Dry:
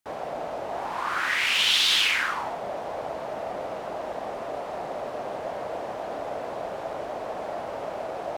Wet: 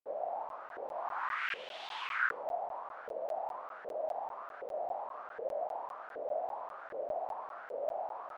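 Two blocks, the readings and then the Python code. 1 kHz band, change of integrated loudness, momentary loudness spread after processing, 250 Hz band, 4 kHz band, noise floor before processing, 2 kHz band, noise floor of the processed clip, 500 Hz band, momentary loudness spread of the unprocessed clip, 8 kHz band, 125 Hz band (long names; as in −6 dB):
−7.0 dB, −12.0 dB, 8 LU, −19.5 dB, −26.0 dB, −35 dBFS, −11.5 dB, −49 dBFS, −7.0 dB, 14 LU, below −30 dB, below −20 dB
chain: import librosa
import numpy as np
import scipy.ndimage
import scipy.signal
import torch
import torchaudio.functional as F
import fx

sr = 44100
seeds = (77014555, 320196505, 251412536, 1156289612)

y = fx.filter_lfo_bandpass(x, sr, shape='saw_up', hz=1.3, low_hz=460.0, high_hz=1600.0, q=6.0)
y = fx.buffer_crackle(y, sr, first_s=0.49, period_s=0.2, block=512, kind='zero')
y = y * 10.0 ** (1.0 / 20.0)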